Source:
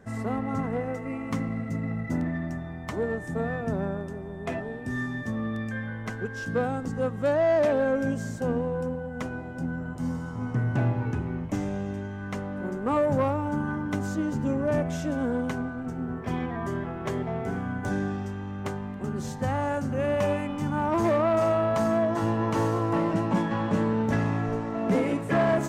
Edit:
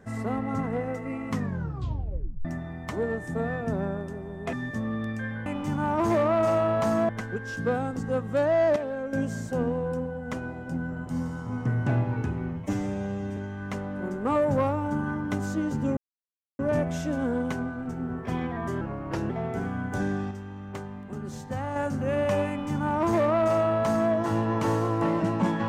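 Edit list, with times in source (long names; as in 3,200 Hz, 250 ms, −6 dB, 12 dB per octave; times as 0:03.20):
0:01.31: tape stop 1.14 s
0:04.53–0:05.05: remove
0:07.65–0:08.02: clip gain −8 dB
0:11.42–0:11.98: time-stretch 1.5×
0:14.58: splice in silence 0.62 s
0:16.80–0:17.21: play speed 84%
0:18.22–0:19.67: clip gain −4.5 dB
0:20.40–0:22.03: duplicate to 0:05.98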